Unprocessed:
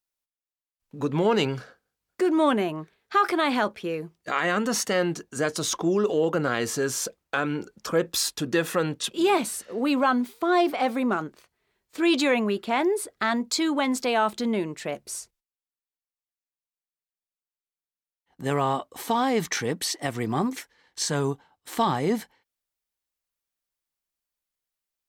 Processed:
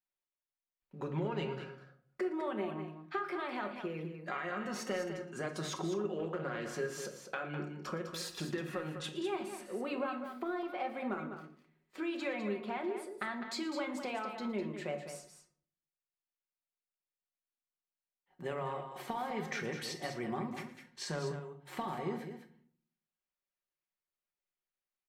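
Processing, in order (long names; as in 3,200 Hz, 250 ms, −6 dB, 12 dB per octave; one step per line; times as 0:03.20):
bass and treble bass −6 dB, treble −13 dB
comb filter 5.5 ms, depth 47%
downward compressor, threshold −29 dBFS, peak gain reduction 13.5 dB
multi-tap delay 115/203 ms −17.5/−8.5 dB
rectangular room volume 610 cubic metres, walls furnished, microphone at 1.2 metres
0:06.19–0:06.73: highs frequency-modulated by the lows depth 0.15 ms
level −7 dB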